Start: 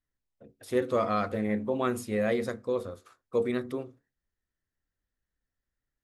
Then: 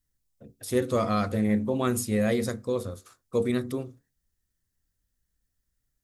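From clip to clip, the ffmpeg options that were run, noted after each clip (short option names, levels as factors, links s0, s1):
-af "bass=f=250:g=9,treble=f=4000:g=12"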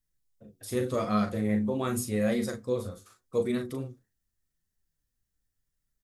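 -filter_complex "[0:a]asplit=2[s0][s1];[s1]adelay=38,volume=0.447[s2];[s0][s2]amix=inputs=2:normalize=0,flanger=delay=4.4:depth=6.3:regen=48:speed=0.84:shape=triangular"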